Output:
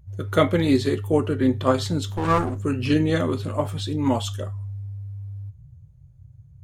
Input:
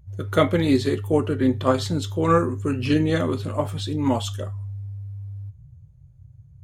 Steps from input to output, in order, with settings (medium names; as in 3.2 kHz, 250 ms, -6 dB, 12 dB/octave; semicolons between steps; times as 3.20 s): 2.08–2.64 s: comb filter that takes the minimum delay 0.72 ms